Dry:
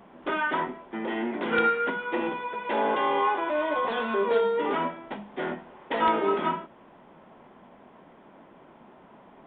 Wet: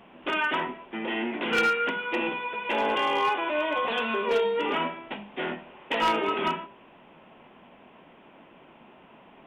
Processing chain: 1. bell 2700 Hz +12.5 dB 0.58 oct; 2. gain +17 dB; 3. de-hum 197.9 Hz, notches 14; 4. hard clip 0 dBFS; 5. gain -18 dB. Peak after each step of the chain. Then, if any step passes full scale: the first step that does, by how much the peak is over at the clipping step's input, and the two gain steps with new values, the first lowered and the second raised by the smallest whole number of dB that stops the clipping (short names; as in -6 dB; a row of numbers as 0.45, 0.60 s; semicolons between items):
-8.0, +9.0, +9.0, 0.0, -18.0 dBFS; step 2, 9.0 dB; step 2 +8 dB, step 5 -9 dB